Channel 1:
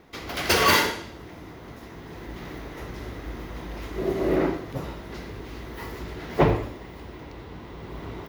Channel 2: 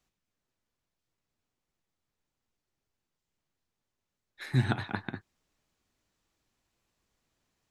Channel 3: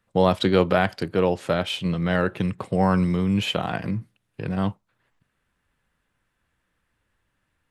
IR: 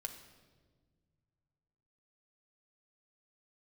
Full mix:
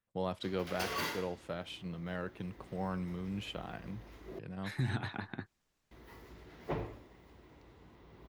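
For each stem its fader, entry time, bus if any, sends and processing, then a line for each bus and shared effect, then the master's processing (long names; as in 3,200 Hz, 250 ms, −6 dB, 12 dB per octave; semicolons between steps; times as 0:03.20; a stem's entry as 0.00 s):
−18.0 dB, 0.30 s, muted 0:04.39–0:05.91, no send, no processing
−2.5 dB, 0.25 s, no send, brickwall limiter −21.5 dBFS, peak gain reduction 11 dB
−17.5 dB, 0.00 s, no send, no processing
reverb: not used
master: no processing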